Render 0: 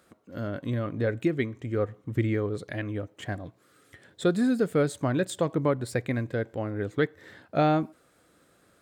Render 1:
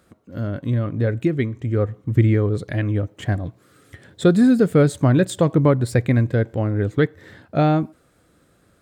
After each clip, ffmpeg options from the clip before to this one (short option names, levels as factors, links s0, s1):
-af "lowshelf=f=190:g=11.5,dynaudnorm=f=320:g=13:m=1.78,volume=1.19"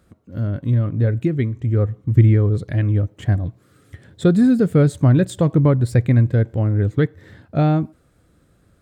-af "lowshelf=f=170:g=11.5,volume=0.668"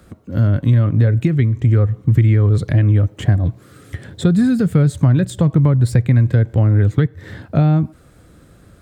-filter_complex "[0:a]asplit=2[s0][s1];[s1]alimiter=limit=0.266:level=0:latency=1:release=317,volume=1.19[s2];[s0][s2]amix=inputs=2:normalize=0,acrossover=split=170|780[s3][s4][s5];[s3]acompressor=threshold=0.158:ratio=4[s6];[s4]acompressor=threshold=0.0447:ratio=4[s7];[s5]acompressor=threshold=0.0178:ratio=4[s8];[s6][s7][s8]amix=inputs=3:normalize=0,volume=1.58"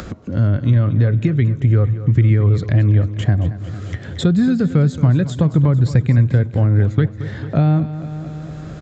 -af "aecho=1:1:225|450|675|900|1125|1350:0.2|0.11|0.0604|0.0332|0.0183|0.01,aresample=16000,aresample=44100,acompressor=mode=upward:threshold=0.126:ratio=2.5,volume=0.891"